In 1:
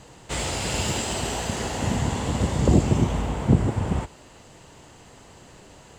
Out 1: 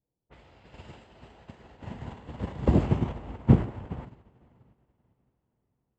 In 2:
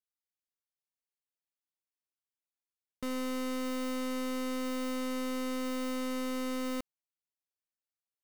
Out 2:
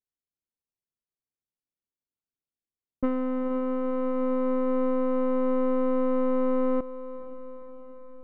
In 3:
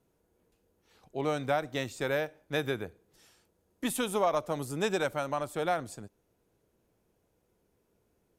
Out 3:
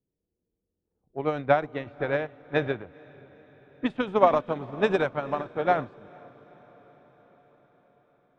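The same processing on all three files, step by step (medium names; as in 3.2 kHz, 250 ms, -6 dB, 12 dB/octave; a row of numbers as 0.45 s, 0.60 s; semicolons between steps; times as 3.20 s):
low-pass 2.6 kHz 12 dB/octave; transient shaper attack +3 dB, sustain +8 dB; level-controlled noise filter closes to 390 Hz, open at -22.5 dBFS; echo that smears into a reverb 470 ms, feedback 64%, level -10.5 dB; upward expansion 2.5:1, over -36 dBFS; normalise loudness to -27 LUFS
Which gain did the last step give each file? -0.5 dB, +11.0 dB, +9.5 dB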